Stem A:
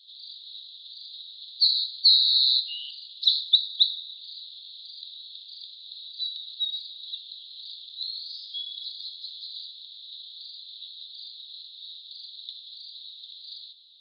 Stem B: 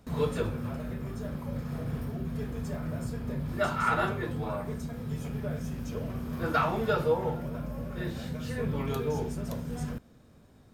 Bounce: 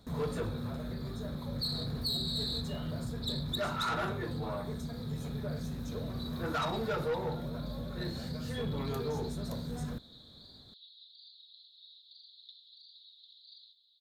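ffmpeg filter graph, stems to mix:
-filter_complex "[0:a]aecho=1:1:4.2:0.97,volume=-15dB[a];[1:a]volume=-2dB[b];[a][b]amix=inputs=2:normalize=0,equalizer=f=2.7k:t=o:w=0.63:g=-5.5,asoftclip=type=tanh:threshold=-28dB"

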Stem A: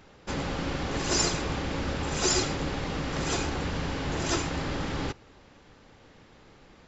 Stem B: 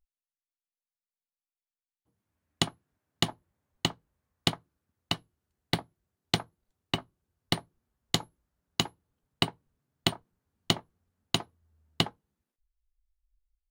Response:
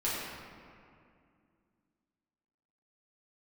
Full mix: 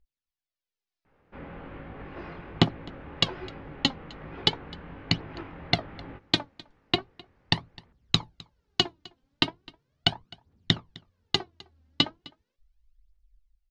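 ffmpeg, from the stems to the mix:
-filter_complex "[0:a]lowpass=f=2.4k:w=0.5412,lowpass=f=2.4k:w=1.3066,flanger=delay=18:depth=6.2:speed=1.2,adelay=1050,volume=-16dB,asplit=2[a][b];[b]volume=-20dB[c];[1:a]equalizer=f=1.1k:t=o:w=1.8:g=-4.5,acompressor=threshold=-31dB:ratio=2,aphaser=in_gain=1:out_gain=1:delay=3.9:decay=0.65:speed=0.38:type=triangular,volume=0.5dB,asplit=2[d][e];[e]volume=-23.5dB[f];[c][f]amix=inputs=2:normalize=0,aecho=0:1:258:1[g];[a][d][g]amix=inputs=3:normalize=0,lowpass=f=5.3k:w=0.5412,lowpass=f=5.3k:w=1.3066,dynaudnorm=f=160:g=13:m=10dB"

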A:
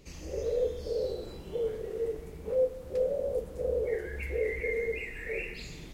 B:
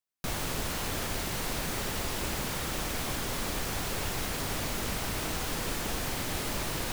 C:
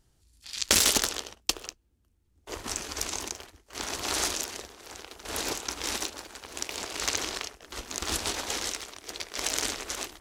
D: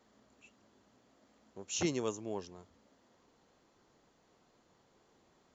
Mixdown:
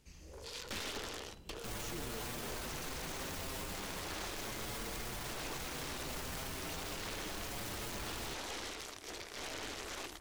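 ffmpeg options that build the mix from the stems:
-filter_complex "[0:a]equalizer=f=450:w=0.79:g=-6,aeval=exprs='0.0178*(abs(mod(val(0)/0.0178+3,4)-2)-1)':c=same,volume=-10.5dB[a];[1:a]asplit=2[b][c];[c]adelay=6.7,afreqshift=0.32[d];[b][d]amix=inputs=2:normalize=1,adelay=1400,volume=-2dB[e];[2:a]acrossover=split=4000[f][g];[g]acompressor=threshold=-38dB:ratio=4:attack=1:release=60[h];[f][h]amix=inputs=2:normalize=0,aeval=exprs='(tanh(31.6*val(0)+0.6)-tanh(0.6))/31.6':c=same,volume=1.5dB[i];[3:a]adelay=100,volume=-8.5dB[j];[a][e][i][j]amix=inputs=4:normalize=0,alimiter=level_in=9dB:limit=-24dB:level=0:latency=1:release=11,volume=-9dB"

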